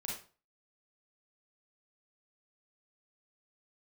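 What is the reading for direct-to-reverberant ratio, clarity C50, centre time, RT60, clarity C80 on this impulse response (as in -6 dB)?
-4.0 dB, 1.5 dB, 42 ms, 0.40 s, 9.0 dB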